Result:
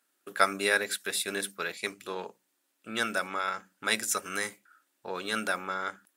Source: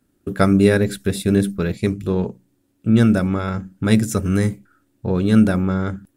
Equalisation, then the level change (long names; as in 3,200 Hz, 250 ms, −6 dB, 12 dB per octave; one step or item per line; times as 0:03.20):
high-pass filter 980 Hz 12 dB per octave
0.0 dB